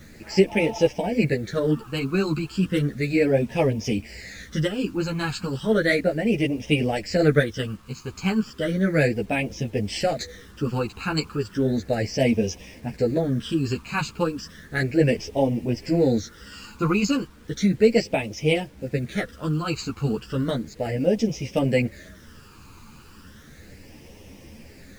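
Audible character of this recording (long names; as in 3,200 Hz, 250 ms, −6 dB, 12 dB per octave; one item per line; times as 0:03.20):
phaser sweep stages 12, 0.34 Hz, lowest notch 590–1,400 Hz
a quantiser's noise floor 10 bits, dither none
a shimmering, thickened sound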